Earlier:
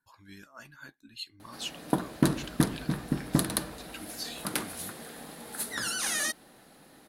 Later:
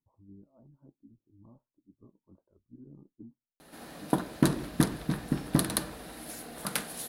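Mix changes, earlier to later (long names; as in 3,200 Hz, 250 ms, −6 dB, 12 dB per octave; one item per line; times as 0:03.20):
speech: add Gaussian smoothing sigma 15 samples
background: entry +2.20 s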